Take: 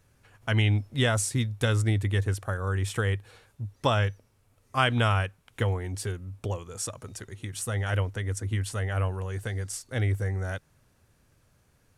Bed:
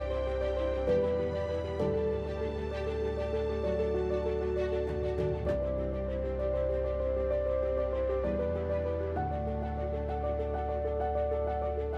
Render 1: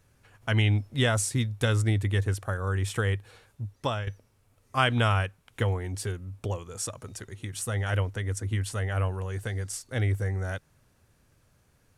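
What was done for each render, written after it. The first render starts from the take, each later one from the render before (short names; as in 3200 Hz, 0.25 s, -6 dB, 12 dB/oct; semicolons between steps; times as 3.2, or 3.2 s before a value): 3.64–4.07 fade out, to -11.5 dB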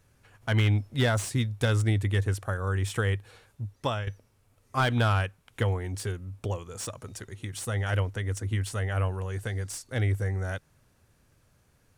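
slew limiter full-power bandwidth 150 Hz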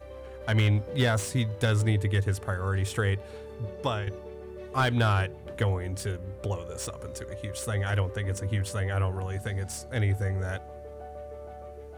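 add bed -10.5 dB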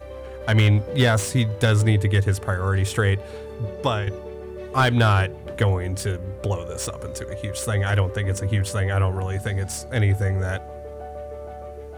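gain +6.5 dB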